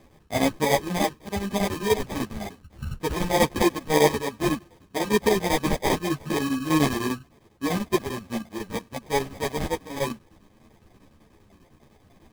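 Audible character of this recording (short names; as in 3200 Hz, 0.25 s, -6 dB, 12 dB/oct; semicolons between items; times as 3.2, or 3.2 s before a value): phasing stages 12, 3.3 Hz, lowest notch 620–3000 Hz; aliases and images of a low sample rate 1400 Hz, jitter 0%; chopped level 10 Hz, depth 65%, duty 75%; a shimmering, thickened sound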